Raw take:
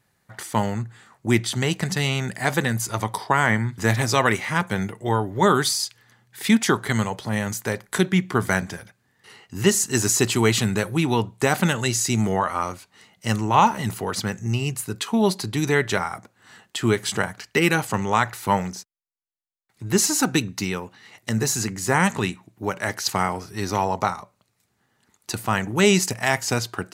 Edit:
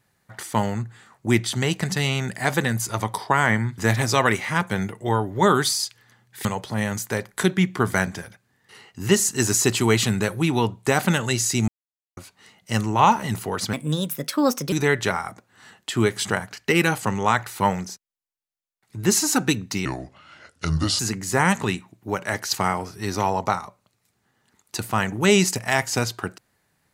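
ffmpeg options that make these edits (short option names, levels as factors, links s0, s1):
-filter_complex "[0:a]asplit=8[s0][s1][s2][s3][s4][s5][s6][s7];[s0]atrim=end=6.452[s8];[s1]atrim=start=6.998:end=12.23,asetpts=PTS-STARTPTS,afade=t=out:st=5.228:d=0.004:c=hsin[s9];[s2]atrim=start=12.23:end=12.72,asetpts=PTS-STARTPTS,volume=0[s10];[s3]atrim=start=12.72:end=14.284,asetpts=PTS-STARTPTS,afade=t=in:d=0.004:c=hsin[s11];[s4]atrim=start=14.28:end=15.59,asetpts=PTS-STARTPTS,asetrate=58212,aresample=44100[s12];[s5]atrim=start=15.586:end=20.724[s13];[s6]atrim=start=20.72:end=21.54,asetpts=PTS-STARTPTS,asetrate=31752,aresample=44100[s14];[s7]atrim=start=21.536[s15];[s9][s10][s11]concat=n=3:v=0:a=1[s16];[s8][s16]acrossfade=d=0.004:c1=hsin:c2=hsin[s17];[s17][s12]acrossfade=d=0.004:c1=hsin:c2=hsin[s18];[s18][s13]acrossfade=d=0.004:c1=hsin:c2=hsin[s19];[s19][s14]acrossfade=d=0.004:c1=hsin:c2=hsin[s20];[s20][s15]acrossfade=d=0.004:c1=hsin:c2=hsin"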